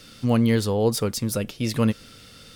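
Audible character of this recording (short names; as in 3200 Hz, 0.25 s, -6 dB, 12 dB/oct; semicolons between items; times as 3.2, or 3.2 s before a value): noise floor -48 dBFS; spectral tilt -6.0 dB/oct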